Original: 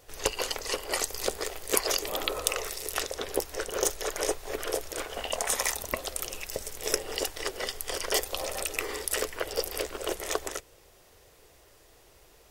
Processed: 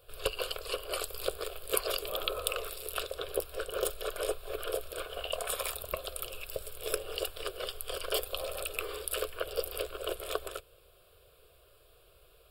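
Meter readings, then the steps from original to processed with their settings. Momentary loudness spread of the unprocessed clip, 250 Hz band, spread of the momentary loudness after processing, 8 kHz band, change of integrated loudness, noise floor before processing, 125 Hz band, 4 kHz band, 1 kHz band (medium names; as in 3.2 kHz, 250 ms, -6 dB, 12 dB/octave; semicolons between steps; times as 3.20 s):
6 LU, -8.5 dB, 6 LU, -9.0 dB, -5.0 dB, -58 dBFS, -3.0 dB, -4.0 dB, -5.0 dB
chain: static phaser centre 1.3 kHz, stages 8; trim -1.5 dB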